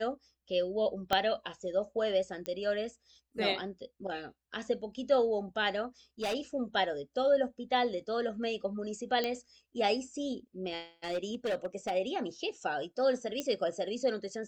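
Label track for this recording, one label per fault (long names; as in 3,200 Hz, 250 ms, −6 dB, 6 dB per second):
1.130000	1.130000	click −13 dBFS
2.460000	2.460000	click −22 dBFS
6.220000	6.350000	clipping −30 dBFS
9.240000	9.240000	click −18 dBFS
11.040000	11.920000	clipping −28.5 dBFS
13.400000	13.400000	click −19 dBFS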